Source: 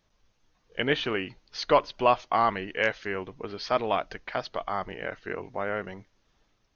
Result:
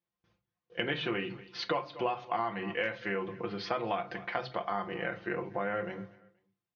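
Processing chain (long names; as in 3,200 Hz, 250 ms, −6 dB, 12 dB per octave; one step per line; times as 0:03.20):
low-pass filter 3,600 Hz 12 dB per octave
noise gate with hold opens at −56 dBFS
comb filter 5.8 ms, depth 67%
repeating echo 238 ms, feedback 28%, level −23.5 dB
on a send at −6.5 dB: convolution reverb RT60 0.30 s, pre-delay 3 ms
on the sum: downward compressor 6 to 1, threshold −28 dBFS, peak gain reduction 13 dB
high-pass filter 70 Hz 24 dB per octave
level −1 dB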